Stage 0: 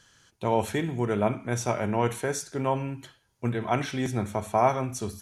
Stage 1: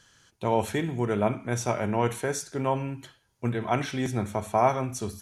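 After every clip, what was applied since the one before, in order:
no processing that can be heard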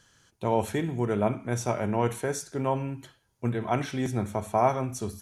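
parametric band 3,000 Hz −3.5 dB 2.8 octaves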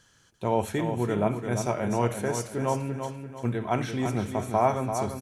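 repeating echo 341 ms, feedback 38%, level −7.5 dB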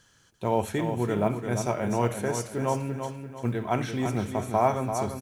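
log-companded quantiser 8 bits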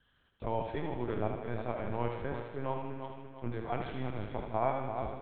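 linear-prediction vocoder at 8 kHz pitch kept
feedback echo with a high-pass in the loop 78 ms, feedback 57%, high-pass 200 Hz, level −6 dB
level −8.5 dB

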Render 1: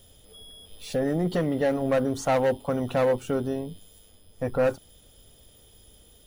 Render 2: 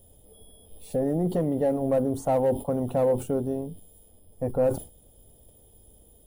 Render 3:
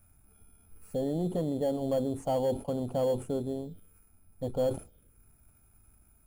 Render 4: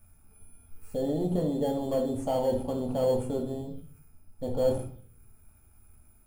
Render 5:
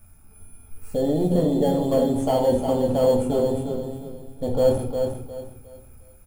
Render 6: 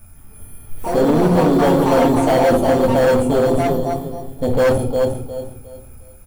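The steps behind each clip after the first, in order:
flat-topped bell 2,800 Hz −14 dB 2.8 octaves; level that may fall only so fast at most 150 dB per second
phaser swept by the level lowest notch 450 Hz, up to 4,600 Hz, full sweep at −24 dBFS; in parallel at −10 dB: sample-rate reduction 3,800 Hz, jitter 0%; on the sum: level −7.5 dB
convolution reverb RT60 0.45 s, pre-delay 3 ms, DRR 0.5 dB
repeating echo 357 ms, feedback 29%, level −6 dB; level +7 dB
gain into a clipping stage and back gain 18.5 dB; delay with pitch and tempo change per echo 155 ms, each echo +5 semitones, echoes 2, each echo −6 dB; level +7.5 dB

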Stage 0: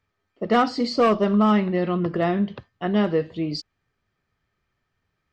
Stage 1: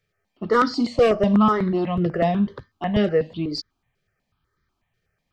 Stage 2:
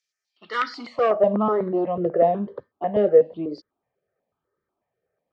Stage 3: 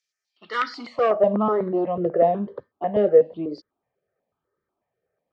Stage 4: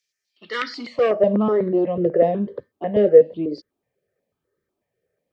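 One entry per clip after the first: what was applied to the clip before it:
step-sequenced phaser 8.1 Hz 260–2,700 Hz; level +4 dB
band-pass filter sweep 5,900 Hz → 530 Hz, 0:00.20–0:01.35; level +7 dB
no processing that can be heard
flat-topped bell 980 Hz −8.5 dB 1.3 octaves; level +4 dB

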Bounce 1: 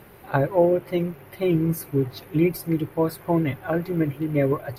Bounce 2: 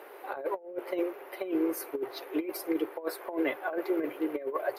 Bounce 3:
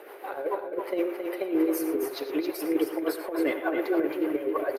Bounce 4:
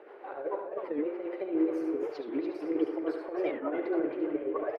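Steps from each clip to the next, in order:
inverse Chebyshev high-pass filter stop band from 190 Hz, stop band 40 dB; high-shelf EQ 2,200 Hz −10 dB; compressor whose output falls as the input rises −30 dBFS, ratio −0.5
rotating-speaker cabinet horn 6.7 Hz; single-tap delay 270 ms −6 dB; reverb whose tail is shaped and stops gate 130 ms rising, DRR 10 dB; level +5.5 dB
head-to-tape spacing loss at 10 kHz 30 dB; single-tap delay 72 ms −6.5 dB; wow of a warped record 45 rpm, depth 250 cents; level −3.5 dB

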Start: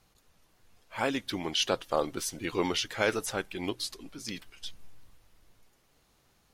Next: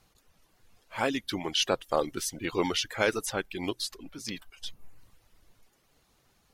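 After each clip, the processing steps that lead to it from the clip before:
reverb reduction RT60 0.53 s
level +1.5 dB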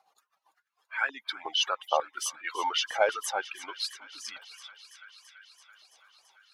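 expanding power law on the bin magnitudes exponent 1.7
delay with a high-pass on its return 334 ms, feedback 76%, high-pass 1,500 Hz, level −15 dB
high-pass on a step sequencer 5.5 Hz 760–1,600 Hz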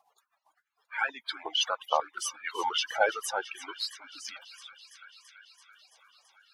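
spectral magnitudes quantised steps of 30 dB

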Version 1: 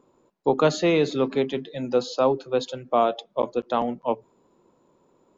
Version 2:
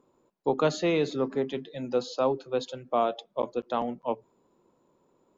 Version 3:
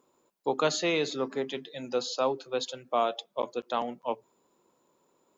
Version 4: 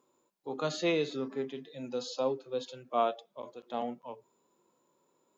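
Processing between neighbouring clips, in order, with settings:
gain on a spectral selection 0:01.16–0:01.47, 2,100–4,700 Hz −10 dB; level −5 dB
spectral tilt +2.5 dB per octave
harmonic and percussive parts rebalanced percussive −15 dB

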